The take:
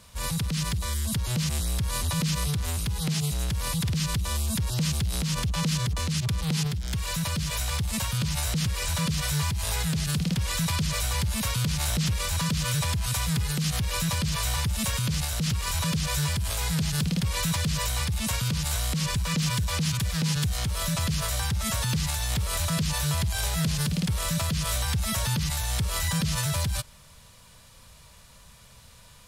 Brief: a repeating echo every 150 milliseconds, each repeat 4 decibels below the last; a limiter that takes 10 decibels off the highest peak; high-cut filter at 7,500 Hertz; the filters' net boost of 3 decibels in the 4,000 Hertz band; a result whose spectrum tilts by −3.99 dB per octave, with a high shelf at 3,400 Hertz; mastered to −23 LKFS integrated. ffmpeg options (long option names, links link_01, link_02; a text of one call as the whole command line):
ffmpeg -i in.wav -af "lowpass=7500,highshelf=frequency=3400:gain=-3.5,equalizer=frequency=4000:width_type=o:gain=6.5,alimiter=limit=-24dB:level=0:latency=1,aecho=1:1:150|300|450|600|750|900|1050|1200|1350:0.631|0.398|0.25|0.158|0.0994|0.0626|0.0394|0.0249|0.0157,volume=6.5dB" out.wav